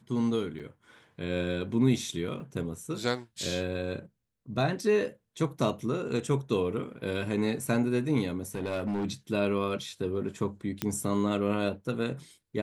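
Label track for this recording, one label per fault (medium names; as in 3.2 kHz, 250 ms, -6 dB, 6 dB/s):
0.590000	0.600000	dropout 7.2 ms
2.400000	2.400000	dropout 2.5 ms
8.550000	9.060000	clipped -27 dBFS
10.820000	10.820000	pop -13 dBFS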